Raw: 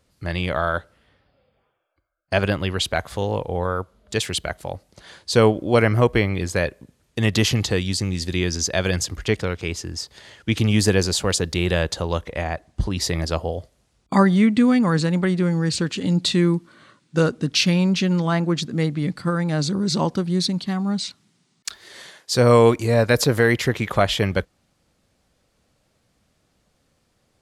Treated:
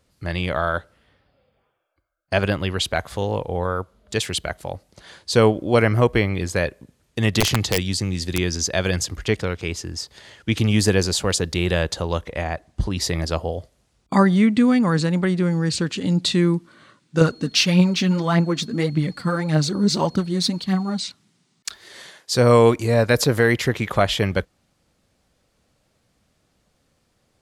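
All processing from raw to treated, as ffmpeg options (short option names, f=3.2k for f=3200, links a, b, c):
-filter_complex "[0:a]asettb=1/sr,asplit=3[a][b][c];[a]atrim=end=7.404[d];[b]atrim=start=7.4:end=8.38,asetpts=PTS-STARTPTS,afade=t=in:d=0.004:c=qsin,afade=t=out:st=0.976:d=0.004:c=qsin,highpass=f=46:w=0.5412,highpass=f=46:w=1.3066,aeval=exprs='(mod(2.99*val(0)+1,2)-1)/2.99':c=same[e];[c]atrim=start=8.376[f];[d][e]acrossfade=d=0.004:c1=hsin:c2=qsin[g];[g][f]acrossfade=d=0.004:c1=qsin:c2=hsin,asettb=1/sr,asplit=3[h][i][j];[h]atrim=end=17.214[k];[i]atrim=start=17.21:end=21,asetpts=PTS-STARTPTS,afade=t=in:d=0.004:c=qsin,afade=t=out:st=3.786:d=0.004:c=qsin,aphaser=in_gain=1:out_gain=1:delay=5:decay=0.52:speed=1.7:type=triangular,aeval=exprs='val(0)+0.00398*sin(2*PI*4300*n/s)':c=same[l];[j]atrim=start=20.996[m];[k][l]acrossfade=d=0.004:c1=hsin:c2=qsin[n];[n][m]acrossfade=d=0.004:c1=qsin:c2=hsin"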